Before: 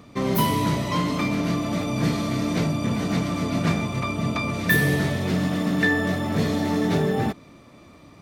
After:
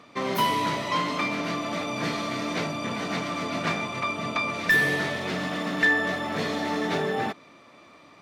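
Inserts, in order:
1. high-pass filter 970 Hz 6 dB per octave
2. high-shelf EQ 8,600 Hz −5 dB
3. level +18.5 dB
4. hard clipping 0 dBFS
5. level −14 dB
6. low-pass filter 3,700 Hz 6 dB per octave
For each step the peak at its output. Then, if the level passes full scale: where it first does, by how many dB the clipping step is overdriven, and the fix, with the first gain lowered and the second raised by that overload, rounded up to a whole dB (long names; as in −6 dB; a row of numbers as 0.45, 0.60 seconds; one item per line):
−10.5, −11.5, +7.0, 0.0, −14.0, −14.0 dBFS
step 3, 7.0 dB
step 3 +11.5 dB, step 5 −7 dB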